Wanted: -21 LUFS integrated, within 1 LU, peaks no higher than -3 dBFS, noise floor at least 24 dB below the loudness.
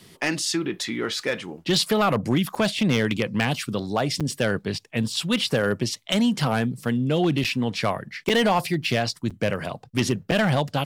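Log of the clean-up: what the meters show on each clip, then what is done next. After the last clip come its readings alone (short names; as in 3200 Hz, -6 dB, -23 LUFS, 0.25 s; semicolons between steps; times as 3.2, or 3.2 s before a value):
clipped 0.5%; flat tops at -13.5 dBFS; dropouts 6; longest dropout 6.4 ms; loudness -24.0 LUFS; peak -13.5 dBFS; loudness target -21.0 LUFS
-> clip repair -13.5 dBFS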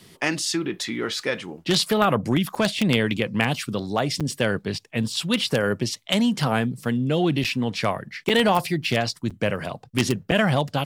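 clipped 0.0%; dropouts 6; longest dropout 6.4 ms
-> interpolate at 2.55/4.2/7.44/8.29/9.3/10.31, 6.4 ms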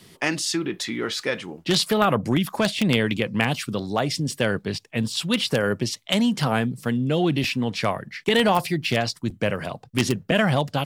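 dropouts 0; loudness -23.5 LUFS; peak -4.5 dBFS; loudness target -21.0 LUFS
-> gain +2.5 dB; limiter -3 dBFS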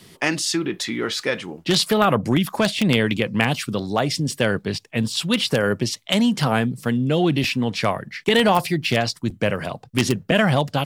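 loudness -21.0 LUFS; peak -3.0 dBFS; noise floor -52 dBFS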